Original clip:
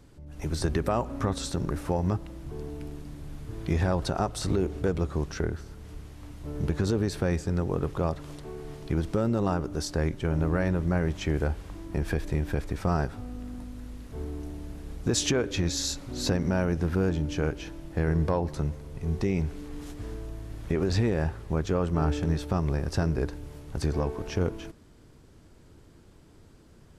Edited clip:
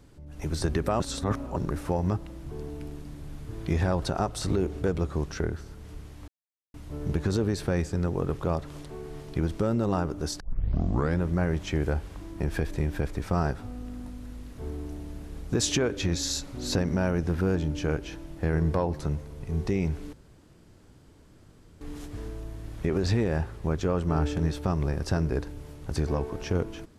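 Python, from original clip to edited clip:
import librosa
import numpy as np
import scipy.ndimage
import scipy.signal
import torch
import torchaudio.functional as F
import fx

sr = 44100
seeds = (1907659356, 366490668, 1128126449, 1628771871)

y = fx.edit(x, sr, fx.reverse_span(start_s=1.0, length_s=0.56),
    fx.insert_silence(at_s=6.28, length_s=0.46),
    fx.tape_start(start_s=9.94, length_s=0.8),
    fx.insert_room_tone(at_s=19.67, length_s=1.68), tone=tone)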